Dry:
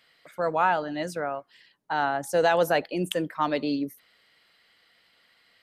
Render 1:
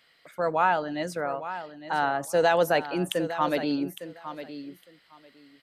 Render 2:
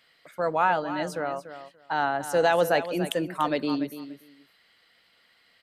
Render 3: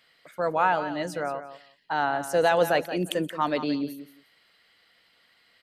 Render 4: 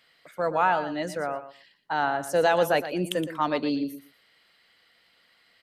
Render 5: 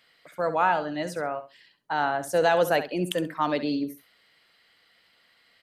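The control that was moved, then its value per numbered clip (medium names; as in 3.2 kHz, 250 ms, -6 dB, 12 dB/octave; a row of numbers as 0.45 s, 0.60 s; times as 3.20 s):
feedback delay, time: 858 ms, 290 ms, 176 ms, 118 ms, 67 ms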